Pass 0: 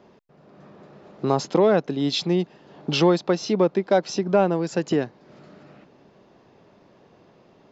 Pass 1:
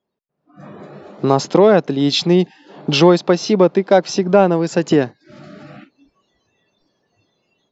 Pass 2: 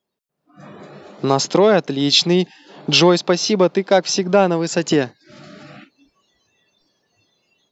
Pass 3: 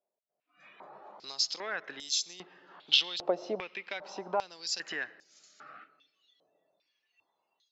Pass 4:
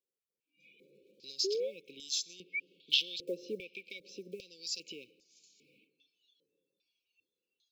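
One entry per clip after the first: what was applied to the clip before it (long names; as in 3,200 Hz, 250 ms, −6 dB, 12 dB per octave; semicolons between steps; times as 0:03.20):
noise reduction from a noise print of the clip's start 26 dB; automatic gain control gain up to 12.5 dB
high-shelf EQ 2,200 Hz +10 dB; level −3 dB
downward compressor 4 to 1, threshold −16 dBFS, peak gain reduction 7 dB; comb and all-pass reverb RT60 2.6 s, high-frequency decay 0.3×, pre-delay 50 ms, DRR 18.5 dB; band-pass on a step sequencer 2.5 Hz 650–6,700 Hz
one scale factor per block 7 bits; sound drawn into the spectrogram rise, 0:01.44–0:02.60, 370–2,400 Hz −29 dBFS; linear-phase brick-wall band-stop 550–2,200 Hz; level −4 dB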